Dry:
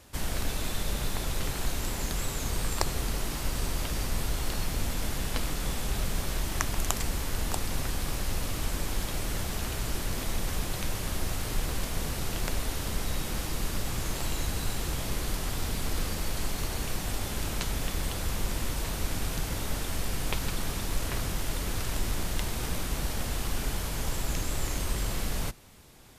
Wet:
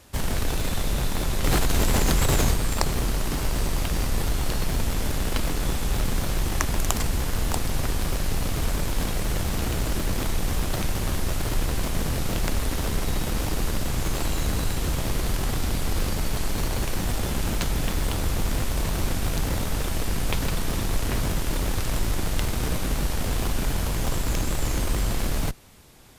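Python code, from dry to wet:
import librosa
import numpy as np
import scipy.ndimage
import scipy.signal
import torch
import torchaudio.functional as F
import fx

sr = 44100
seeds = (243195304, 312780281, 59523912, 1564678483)

p1 = fx.schmitt(x, sr, flips_db=-31.5)
p2 = x + (p1 * 10.0 ** (-3.5 / 20.0))
p3 = fx.env_flatten(p2, sr, amount_pct=100, at=(1.44, 2.54))
y = p3 * 10.0 ** (2.5 / 20.0)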